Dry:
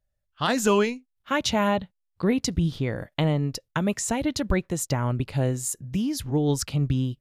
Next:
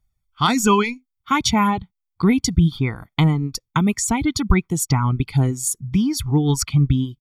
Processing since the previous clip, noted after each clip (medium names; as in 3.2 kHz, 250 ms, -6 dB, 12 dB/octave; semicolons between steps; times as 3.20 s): comb 0.9 ms, depth 94%; reverb removal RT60 1 s; trim +4 dB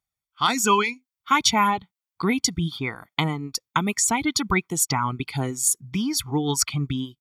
high-pass 580 Hz 6 dB/octave; level rider gain up to 7 dB; trim -3.5 dB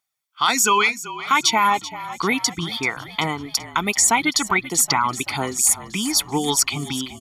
peak limiter -14 dBFS, peak gain reduction 8 dB; high-pass 630 Hz 6 dB/octave; frequency-shifting echo 385 ms, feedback 58%, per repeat -38 Hz, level -15 dB; trim +8 dB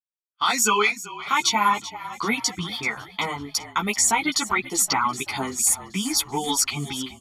expander -31 dBFS; three-phase chorus